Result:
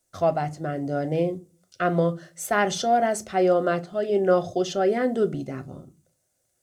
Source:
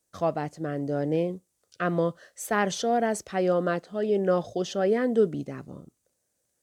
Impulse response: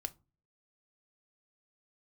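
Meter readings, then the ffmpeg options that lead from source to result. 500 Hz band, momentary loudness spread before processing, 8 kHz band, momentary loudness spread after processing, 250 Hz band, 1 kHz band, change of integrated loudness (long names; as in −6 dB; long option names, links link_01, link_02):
+3.0 dB, 10 LU, +3.0 dB, 11 LU, +1.5 dB, +5.0 dB, +3.0 dB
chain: -filter_complex "[1:a]atrim=start_sample=2205[link_01];[0:a][link_01]afir=irnorm=-1:irlink=0,volume=5dB"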